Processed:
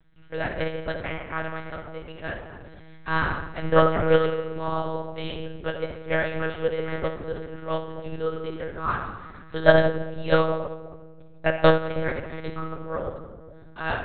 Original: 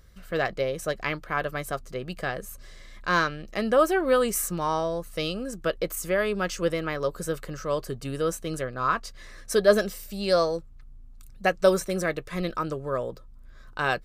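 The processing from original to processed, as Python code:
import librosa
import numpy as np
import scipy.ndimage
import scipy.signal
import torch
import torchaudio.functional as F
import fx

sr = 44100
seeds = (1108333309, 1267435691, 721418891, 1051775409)

y = fx.room_shoebox(x, sr, seeds[0], volume_m3=2000.0, walls='mixed', distance_m=2.3)
y = fx.lpc_monotone(y, sr, seeds[1], pitch_hz=160.0, order=10)
y = fx.upward_expand(y, sr, threshold_db=-31.0, expansion=1.5)
y = y * 10.0 ** (1.0 / 20.0)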